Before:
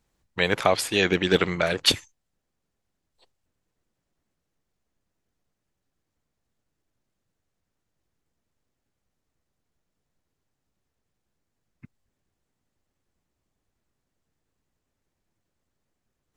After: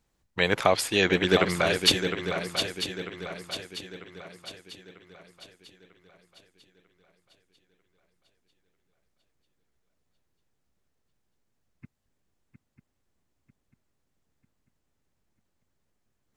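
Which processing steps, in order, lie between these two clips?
swung echo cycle 0.945 s, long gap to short 3:1, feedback 44%, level -8 dB; gain -1 dB

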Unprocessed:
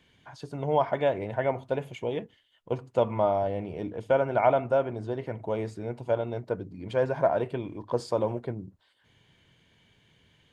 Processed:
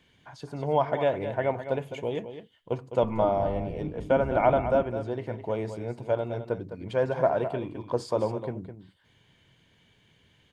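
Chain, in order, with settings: 3.02–4.83 octaver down 1 oct, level 0 dB; echo 0.208 s -10.5 dB

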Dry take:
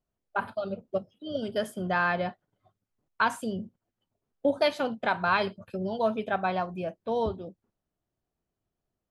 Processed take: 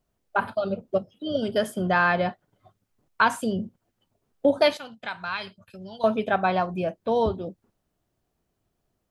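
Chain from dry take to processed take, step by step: 4.77–6.04 passive tone stack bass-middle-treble 5-5-5; in parallel at -2 dB: compressor, threshold -40 dBFS, peak gain reduction 18.5 dB; on the sum: gain +4 dB

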